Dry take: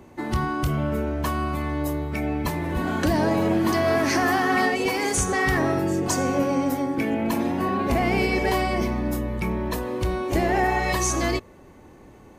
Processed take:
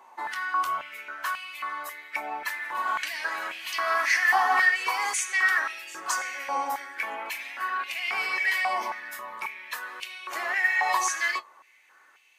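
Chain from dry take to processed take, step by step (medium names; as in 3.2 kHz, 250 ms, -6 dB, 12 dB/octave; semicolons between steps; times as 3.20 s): flange 0.38 Hz, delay 7.3 ms, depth 8.1 ms, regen -45%; step-sequenced high-pass 3.7 Hz 930–2600 Hz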